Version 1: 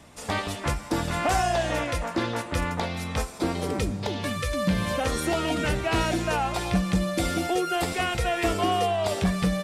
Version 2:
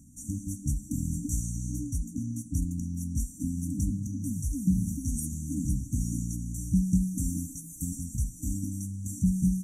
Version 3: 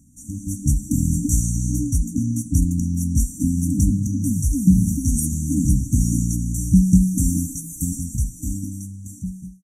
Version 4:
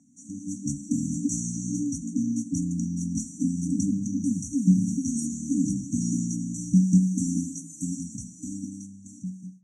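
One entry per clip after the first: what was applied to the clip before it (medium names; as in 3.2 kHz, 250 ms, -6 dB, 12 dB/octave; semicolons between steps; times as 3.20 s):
FFT band-reject 310–5700 Hz
fade out at the end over 2.27 s; level rider gain up to 11.5 dB
cabinet simulation 170–6400 Hz, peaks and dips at 730 Hz +9 dB, 2.8 kHz -9 dB, 4.5 kHz -9 dB; reverberation RT60 0.45 s, pre-delay 3 ms, DRR 14 dB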